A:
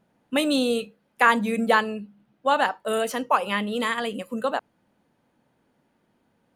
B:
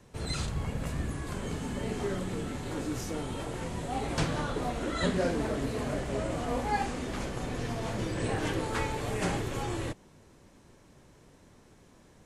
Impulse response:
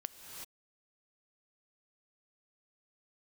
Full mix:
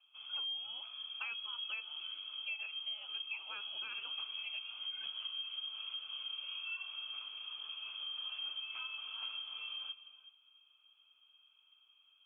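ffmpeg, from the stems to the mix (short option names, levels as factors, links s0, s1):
-filter_complex "[0:a]volume=0.75[s0];[1:a]volume=0.841,asplit=2[s1][s2];[s2]volume=0.501[s3];[2:a]atrim=start_sample=2205[s4];[s3][s4]afir=irnorm=-1:irlink=0[s5];[s0][s1][s5]amix=inputs=3:normalize=0,asplit=3[s6][s7][s8];[s6]bandpass=f=300:t=q:w=8,volume=1[s9];[s7]bandpass=f=870:t=q:w=8,volume=0.501[s10];[s8]bandpass=f=2240:t=q:w=8,volume=0.355[s11];[s9][s10][s11]amix=inputs=3:normalize=0,lowpass=f=3000:t=q:w=0.5098,lowpass=f=3000:t=q:w=0.6013,lowpass=f=3000:t=q:w=0.9,lowpass=f=3000:t=q:w=2.563,afreqshift=-3500,acompressor=threshold=0.0112:ratio=6"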